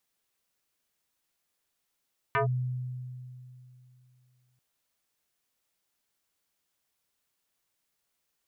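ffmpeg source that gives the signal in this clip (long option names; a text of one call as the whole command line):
ffmpeg -f lavfi -i "aevalsrc='0.0794*pow(10,-3*t/2.82)*sin(2*PI*126*t+3.7*clip(1-t/0.12,0,1)*sin(2*PI*4.37*126*t))':duration=2.24:sample_rate=44100" out.wav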